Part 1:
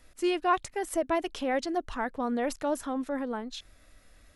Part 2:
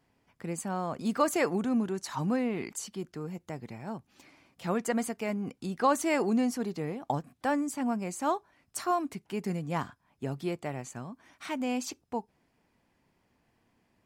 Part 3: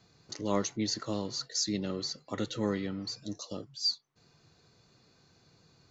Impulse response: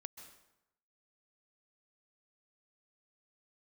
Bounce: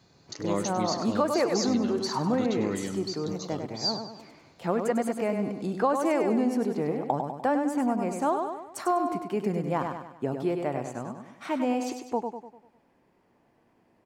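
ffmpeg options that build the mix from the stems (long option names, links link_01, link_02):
-filter_complex "[1:a]equalizer=frequency=520:width=0.35:gain=12,volume=-4dB,asplit=2[link_01][link_02];[link_02]volume=-6.5dB[link_03];[2:a]volume=1.5dB,asplit=2[link_04][link_05];[link_05]volume=-14dB[link_06];[link_03][link_06]amix=inputs=2:normalize=0,aecho=0:1:99|198|297|396|495|594:1|0.45|0.202|0.0911|0.041|0.0185[link_07];[link_01][link_04][link_07]amix=inputs=3:normalize=0,acompressor=threshold=-23dB:ratio=2.5"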